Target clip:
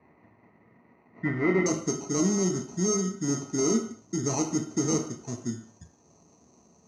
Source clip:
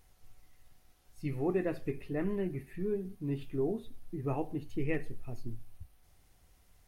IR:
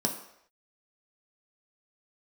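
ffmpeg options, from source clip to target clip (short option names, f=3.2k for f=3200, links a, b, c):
-filter_complex "[0:a]highpass=f=73:w=0.5412,highpass=f=73:w=1.3066,acrusher=samples=26:mix=1:aa=0.000001,asoftclip=type=tanh:threshold=-32dB,asetnsamples=n=441:p=0,asendcmd='1.66 lowpass f 6600',lowpass=f=2k:t=q:w=8.6[a];[1:a]atrim=start_sample=2205,afade=t=out:st=0.3:d=0.01,atrim=end_sample=13671,asetrate=48510,aresample=44100[b];[a][b]afir=irnorm=-1:irlink=0,volume=-1dB"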